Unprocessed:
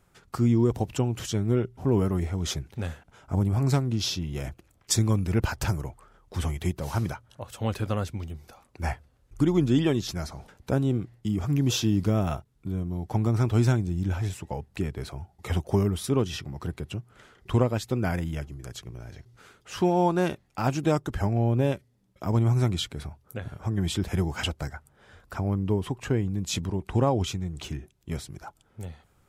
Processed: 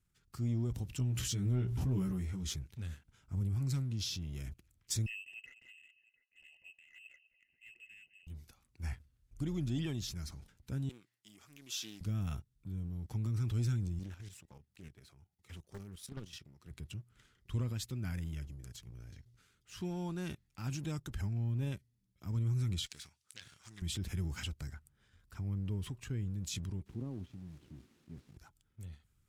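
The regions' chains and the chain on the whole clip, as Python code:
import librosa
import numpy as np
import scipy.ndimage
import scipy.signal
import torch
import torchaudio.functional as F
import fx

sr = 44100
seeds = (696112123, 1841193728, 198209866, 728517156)

y = fx.chain(x, sr, fx.doubler(ms=16.0, db=-2.5),
    fx.pre_swell(db_per_s=51.0), at=(0.98, 2.53))
y = fx.chain(y, sr, fx.vowel_filter(vowel='u'),
    fx.echo_multitap(ms=(201, 701), db=(-15.5, -16.5)),
    fx.freq_invert(carrier_hz=2900), at=(5.06, 8.27))
y = fx.chain(y, sr, fx.bessel_highpass(hz=800.0, order=2),
    fx.doppler_dist(depth_ms=0.11), at=(10.89, 12.01))
y = fx.chain(y, sr, fx.highpass(hz=240.0, slope=6),
    fx.level_steps(step_db=12),
    fx.doppler_dist(depth_ms=0.97), at=(13.99, 16.71))
y = fx.chain(y, sr, fx.self_delay(depth_ms=0.33),
    fx.weighting(curve='ITU-R 468'), at=(22.86, 23.82))
y = fx.chain(y, sr, fx.air_absorb(metres=62.0),
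    fx.quant_dither(seeds[0], bits=6, dither='triangular'),
    fx.bandpass_q(hz=280.0, q=1.2), at=(26.86, 28.37))
y = fx.tone_stack(y, sr, knobs='6-0-2')
y = fx.leveller(y, sr, passes=1)
y = fx.transient(y, sr, attack_db=-1, sustain_db=6)
y = y * 10.0 ** (1.0 / 20.0)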